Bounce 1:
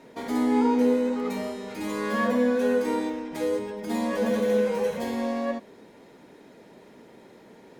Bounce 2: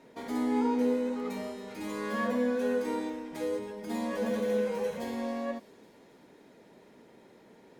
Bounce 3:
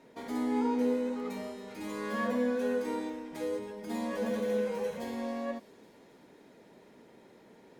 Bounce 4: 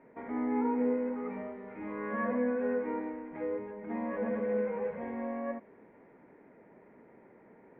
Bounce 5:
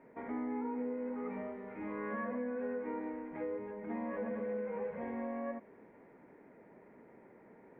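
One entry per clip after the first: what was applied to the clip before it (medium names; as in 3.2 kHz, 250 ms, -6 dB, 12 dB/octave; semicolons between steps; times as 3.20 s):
feedback echo behind a high-pass 274 ms, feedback 66%, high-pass 3.7 kHz, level -16 dB; trim -6 dB
gain riding 2 s; trim -3 dB
elliptic low-pass 2.2 kHz, stop band 60 dB
compression, threshold -34 dBFS, peak gain reduction 8.5 dB; trim -1 dB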